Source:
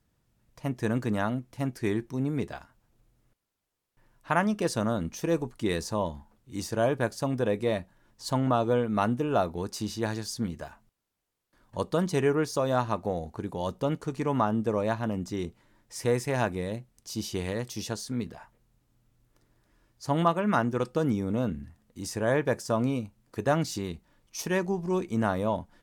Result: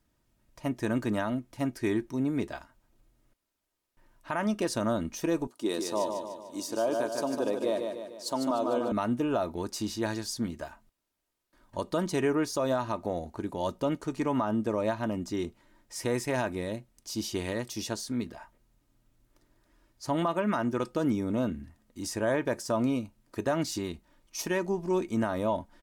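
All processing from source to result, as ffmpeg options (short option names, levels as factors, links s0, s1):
-filter_complex "[0:a]asettb=1/sr,asplit=3[s0][s1][s2];[s0]atrim=end=5.474[s3];[s1]atrim=start=5.47:end=8.92,asetpts=PTS-STARTPTS,afade=t=in:d=0.004:c=qsin,afade=t=out:st=3.446:d=0.004:c=qsin,highpass=290,equalizer=f=2000:w=1.7:g=-10.5,aecho=1:1:149|298|447|596|745|894:0.501|0.251|0.125|0.0626|0.0313|0.0157,atrim=end_sample=152145[s4];[s2]atrim=start=8.916[s5];[s3][s4]acrossfade=d=0.004:c1=hsin:c2=qsin[s6];[s6][s5]acrossfade=d=0.004:c1=qsin:c2=hsin,equalizer=f=85:w=1.1:g=-3.5,aecho=1:1:3.2:0.38,alimiter=limit=0.119:level=0:latency=1:release=75"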